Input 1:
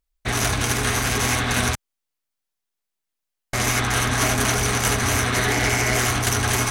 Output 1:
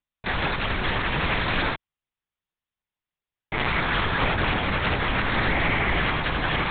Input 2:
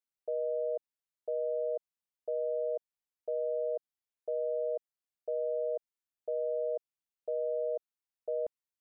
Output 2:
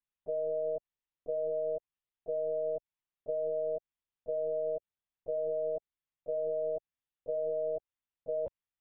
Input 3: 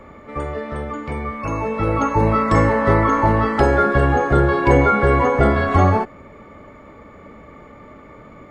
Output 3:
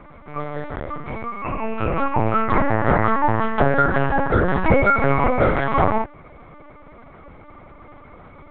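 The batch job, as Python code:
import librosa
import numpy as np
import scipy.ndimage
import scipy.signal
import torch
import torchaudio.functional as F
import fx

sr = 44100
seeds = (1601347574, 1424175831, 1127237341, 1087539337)

y = scipy.signal.sosfilt(scipy.signal.butter(2, 210.0, 'highpass', fs=sr, output='sos'), x)
y = fx.lpc_vocoder(y, sr, seeds[0], excitation='pitch_kept', order=8)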